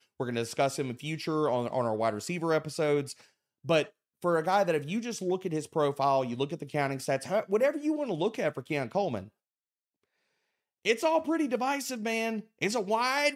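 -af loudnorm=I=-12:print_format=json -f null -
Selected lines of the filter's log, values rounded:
"input_i" : "-29.8",
"input_tp" : "-12.6",
"input_lra" : "3.0",
"input_thresh" : "-40.0",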